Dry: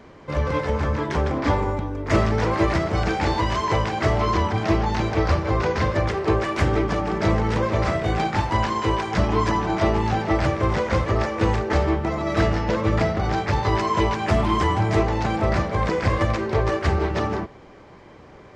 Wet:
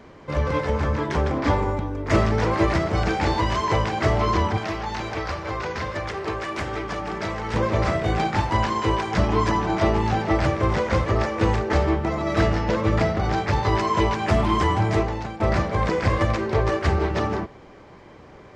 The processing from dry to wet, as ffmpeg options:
-filter_complex "[0:a]asettb=1/sr,asplit=3[s0][s1][s2];[s0]atrim=end=4.574[s3];[s1]atrim=start=4.57:end=7.54,asetpts=PTS-STARTPTS,afade=t=in:d=0.004:c=qsin,afade=t=out:st=2.966:d=0.004:c=qsin,acrossover=split=400|970[s4][s5][s6];[s4]acompressor=threshold=0.0224:ratio=4[s7];[s5]acompressor=threshold=0.02:ratio=4[s8];[s6]acompressor=threshold=0.0316:ratio=4[s9];[s7][s8][s9]amix=inputs=3:normalize=0[s10];[s2]atrim=start=7.536[s11];[s3][s10]acrossfade=d=0.004:c1=hsin:c2=qsin[s12];[s12][s11]acrossfade=d=0.004:c1=qsin:c2=hsin,asplit=2[s13][s14];[s13]atrim=end=15.4,asetpts=PTS-STARTPTS,afade=t=out:st=14.86:d=0.54:silence=0.188365[s15];[s14]atrim=start=15.4,asetpts=PTS-STARTPTS,afade=t=in:d=0.004:c=hsin:silence=0.188365[s16];[s15][s16]concat=n=2:v=0:a=1"

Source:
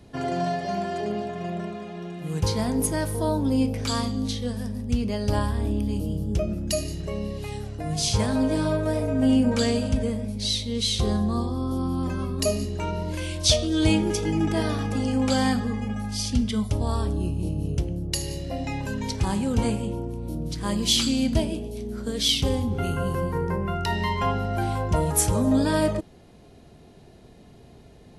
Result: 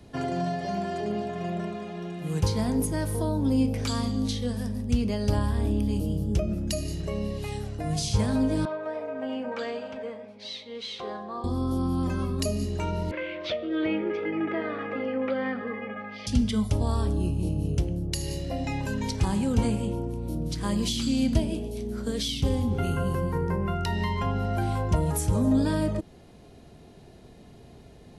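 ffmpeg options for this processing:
-filter_complex "[0:a]asettb=1/sr,asplit=3[s0][s1][s2];[s0]atrim=end=8.654[s3];[s1]atrim=start=8.65:end=11.44,asetpts=PTS-STARTPTS,afade=t=in:d=0.004:c=qsin,afade=t=out:st=2.786:d=0.004:c=qsin,highpass=590,lowpass=2100[s4];[s2]atrim=start=11.436[s5];[s3][s4]acrossfade=d=0.004:c1=hsin:c2=qsin[s6];[s6][s5]acrossfade=d=0.004:c1=qsin:c2=hsin,asettb=1/sr,asplit=3[s7][s8][s9];[s7]atrim=end=13.114[s10];[s8]atrim=start=13.11:end=16.27,asetpts=PTS-STARTPTS,afade=t=in:d=0.004:c=qsin,afade=t=out:st=3.156:d=0.004:c=qsin,highpass=370,equalizer=f=370:t=q:w=4:g=4,equalizer=f=540:t=q:w=4:g=8,equalizer=f=840:t=q:w=4:g=-5,equalizer=f=1300:t=q:w=4:g=6,equalizer=f=2000:t=q:w=4:g=9,lowpass=f=2700:w=0.5412,lowpass=f=2700:w=1.3066[s11];[s9]atrim=start=16.266[s12];[s10][s11]acrossfade=d=0.004:c1=hsin:c2=qsin[s13];[s13][s12]acrossfade=d=0.004:c1=qsin:c2=hsin,acrossover=split=320[s14][s15];[s15]acompressor=threshold=0.0316:ratio=5[s16];[s14][s16]amix=inputs=2:normalize=0"

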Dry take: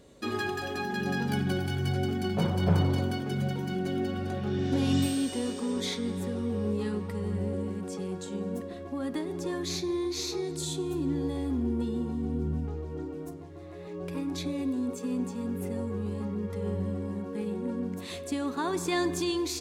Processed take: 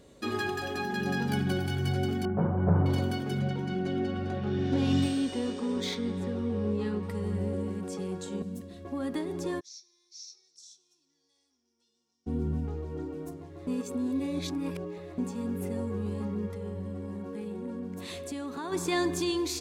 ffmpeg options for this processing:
-filter_complex "[0:a]asettb=1/sr,asplit=3[s0][s1][s2];[s0]atrim=end=2.254[s3];[s1]atrim=start=2.25:end=2.86,asetpts=PTS-STARTPTS,afade=t=in:d=0.004:c=qsin,afade=t=out:st=0.606:d=0.004:c=qsin,lowpass=f=1500:w=0.5412,lowpass=f=1500:w=1.3066[s4];[s2]atrim=start=2.856[s5];[s3][s4]acrossfade=d=0.004:c1=hsin:c2=qsin[s6];[s6][s5]acrossfade=d=0.004:c1=qsin:c2=hsin,asettb=1/sr,asplit=3[s7][s8][s9];[s7]atrim=end=3.394[s10];[s8]atrim=start=3.39:end=7.03,asetpts=PTS-STARTPTS,afade=t=in:d=0.004:c=qsin,afade=t=out:st=3.636:d=0.004:c=qsin,adynamicsmooth=sensitivity=5:basefreq=5600[s11];[s9]atrim=start=7.026[s12];[s10][s11]acrossfade=d=0.004:c1=hsin:c2=qsin[s13];[s13][s12]acrossfade=d=0.004:c1=qsin:c2=hsin,asettb=1/sr,asplit=3[s14][s15][s16];[s14]atrim=end=8.424[s17];[s15]atrim=start=8.42:end=8.85,asetpts=PTS-STARTPTS,afade=t=in:d=0.004:c=qsin,afade=t=out:st=0.426:d=0.004:c=qsin,acrossover=split=240|3000[s18][s19][s20];[s19]acompressor=threshold=0.00251:ratio=3:attack=3.2:release=140:knee=2.83:detection=peak[s21];[s18][s21][s20]amix=inputs=3:normalize=0[s22];[s16]atrim=start=8.846[s23];[s17][s22]acrossfade=d=0.004:c1=hsin:c2=qsin[s24];[s24][s23]acrossfade=d=0.004:c1=qsin:c2=hsin,asplit=3[s25][s26][s27];[s25]afade=t=out:st=9.59:d=0.02[s28];[s26]bandpass=f=5600:t=q:w=15,afade=t=in:st=9.59:d=0.02,afade=t=out:st=12.26:d=0.02[s29];[s27]afade=t=in:st=12.26:d=0.02[s30];[s28][s29][s30]amix=inputs=3:normalize=0,asettb=1/sr,asplit=3[s31][s32][s33];[s31]atrim=end=16.484[s34];[s32]atrim=start=16.48:end=18.72,asetpts=PTS-STARTPTS,afade=t=in:d=0.004:c=qsin,afade=t=out:st=2.236:d=0.004:c=qsin,acompressor=threshold=0.0178:ratio=2.5:attack=3.2:release=140:knee=1:detection=peak[s35];[s33]atrim=start=18.716[s36];[s34][s35]acrossfade=d=0.004:c1=hsin:c2=qsin[s37];[s37][s36]acrossfade=d=0.004:c1=qsin:c2=hsin,asplit=3[s38][s39][s40];[s38]atrim=end=13.672[s41];[s39]atrim=start=13.668:end=15.182,asetpts=PTS-STARTPTS,areverse[s42];[s40]atrim=start=15.178[s43];[s41][s42]acrossfade=d=0.004:c1=hsin:c2=hsin[s44];[s44][s43]acrossfade=d=0.004:c1=hsin:c2=hsin"

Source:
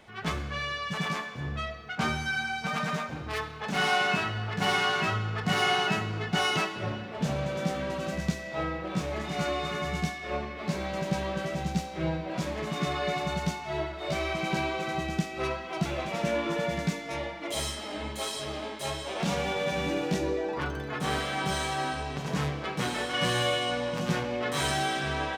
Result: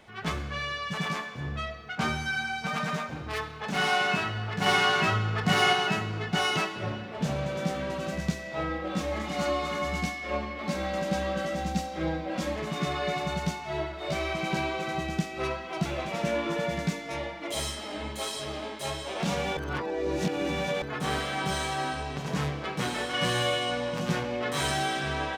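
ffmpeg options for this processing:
-filter_complex "[0:a]asettb=1/sr,asplit=3[s0][s1][s2];[s0]atrim=end=8.694[s3];[s1]atrim=start=8.69:end=12.56,asetpts=PTS-STARTPTS,afade=t=in:d=0.004:c=qsin,afade=t=out:st=3.866:d=0.004:c=qsin,aecho=1:1:3.7:0.65,atrim=end_sample=170667[s4];[s2]atrim=start=12.556[s5];[s3][s4]acrossfade=d=0.004:c1=hsin:c2=qsin[s6];[s6][s5]acrossfade=d=0.004:c1=qsin:c2=hsin,asplit=5[s7][s8][s9][s10][s11];[s7]atrim=end=4.662[s12];[s8]atrim=start=4.658:end=5.732,asetpts=PTS-STARTPTS,volume=1.41[s13];[s9]atrim=start=5.728:end=19.572[s14];[s10]atrim=start=19.568:end=20.822,asetpts=PTS-STARTPTS,areverse[s15];[s11]atrim=start=20.818[s16];[s12][s13]acrossfade=d=0.004:c1=hsin:c2=hsin[s17];[s17][s14]acrossfade=d=0.004:c1=hsin:c2=hsin[s18];[s18][s15]acrossfade=d=0.004:c1=hsin:c2=hsin[s19];[s19][s16]acrossfade=d=0.004:c1=hsin:c2=hsin"

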